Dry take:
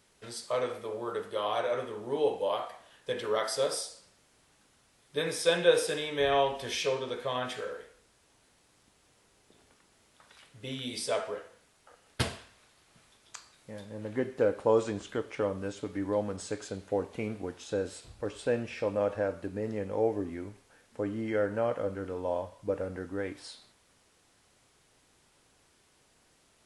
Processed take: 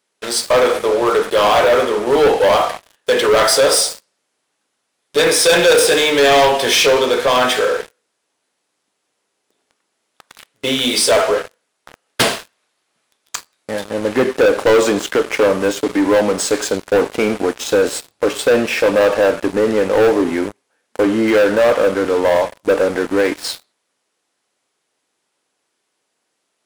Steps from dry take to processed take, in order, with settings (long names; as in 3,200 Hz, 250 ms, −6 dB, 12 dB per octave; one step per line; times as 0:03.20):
high-pass filter 280 Hz 12 dB per octave
leveller curve on the samples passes 5
level +5 dB